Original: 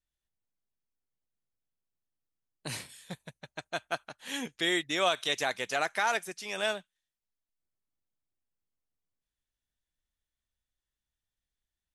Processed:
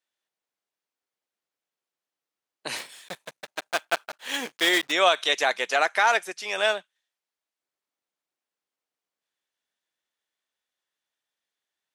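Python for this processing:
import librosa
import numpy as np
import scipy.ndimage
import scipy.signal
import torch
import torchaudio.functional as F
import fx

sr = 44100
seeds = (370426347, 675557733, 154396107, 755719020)

y = fx.block_float(x, sr, bits=3, at=(2.76, 4.92))
y = scipy.signal.sosfilt(scipy.signal.butter(2, 420.0, 'highpass', fs=sr, output='sos'), y)
y = fx.high_shelf(y, sr, hz=7900.0, db=-11.5)
y = y * librosa.db_to_amplitude(8.5)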